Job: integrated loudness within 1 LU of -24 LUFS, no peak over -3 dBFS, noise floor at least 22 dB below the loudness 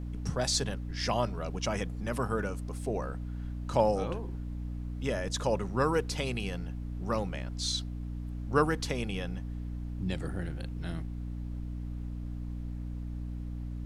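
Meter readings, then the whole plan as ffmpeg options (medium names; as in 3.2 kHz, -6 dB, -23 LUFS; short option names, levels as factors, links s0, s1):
hum 60 Hz; highest harmonic 300 Hz; hum level -35 dBFS; noise floor -38 dBFS; noise floor target -56 dBFS; loudness -34.0 LUFS; peak level -11.5 dBFS; loudness target -24.0 LUFS
-> -af "bandreject=f=60:t=h:w=6,bandreject=f=120:t=h:w=6,bandreject=f=180:t=h:w=6,bandreject=f=240:t=h:w=6,bandreject=f=300:t=h:w=6"
-af "afftdn=nr=18:nf=-38"
-af "volume=3.16,alimiter=limit=0.708:level=0:latency=1"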